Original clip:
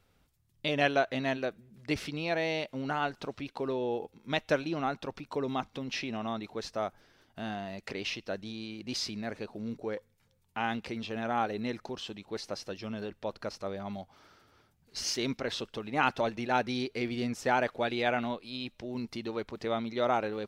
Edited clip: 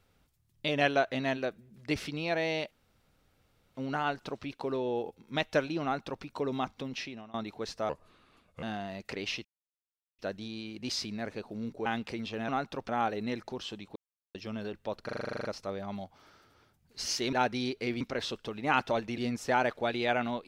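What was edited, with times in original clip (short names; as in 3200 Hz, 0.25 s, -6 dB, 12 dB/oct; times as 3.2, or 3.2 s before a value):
2.71 insert room tone 1.04 s
4.79–5.19 copy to 11.26
5.8–6.3 fade out, to -23.5 dB
6.85–7.41 speed 76%
8.23 insert silence 0.74 s
9.9–10.63 cut
12.33–12.72 mute
13.42 stutter 0.04 s, 11 plays
16.47–17.15 move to 15.3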